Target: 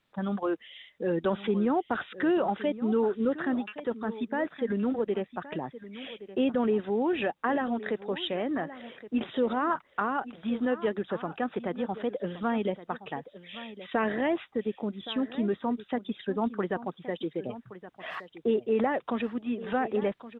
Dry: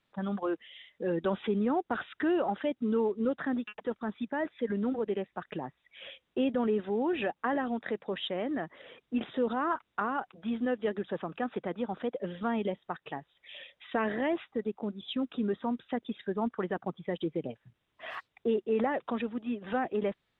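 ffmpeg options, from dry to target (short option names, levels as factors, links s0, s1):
-filter_complex "[0:a]asettb=1/sr,asplit=3[s0][s1][s2];[s0]atrim=end=16.864[s3];[s1]atrim=start=16.86:end=17.47,asetpts=PTS-STARTPTS,afade=t=in:d=0.004:c=qsin,afade=t=out:st=0.606:d=0.004:c=qsin,lowshelf=f=220:g=-9[s4];[s2]atrim=start=17.466[s5];[s3][s4]acrossfade=d=0.004:c1=hsin:c2=qsin[s6];[s6][s5]acrossfade=d=0.004:c1=qsin:c2=hsin,aecho=1:1:1120:0.178,volume=1.33"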